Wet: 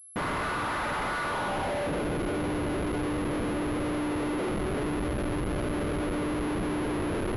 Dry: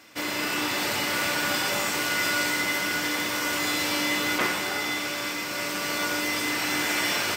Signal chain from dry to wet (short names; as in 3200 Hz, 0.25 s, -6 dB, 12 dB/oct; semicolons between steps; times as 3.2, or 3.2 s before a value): in parallel at -5 dB: sine folder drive 9 dB, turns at -13 dBFS; on the sum: band-pass sweep 1200 Hz -> 400 Hz, 1.21–2.15; Schmitt trigger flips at -29.5 dBFS; air absorption 190 m; pulse-width modulation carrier 11000 Hz